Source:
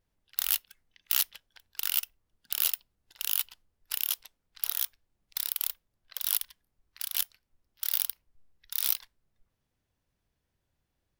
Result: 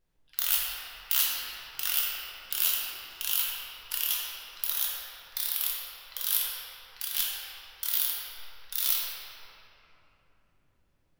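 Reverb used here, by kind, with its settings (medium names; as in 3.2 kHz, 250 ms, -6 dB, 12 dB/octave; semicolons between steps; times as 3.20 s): simulated room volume 210 m³, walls hard, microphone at 0.97 m; trim -1.5 dB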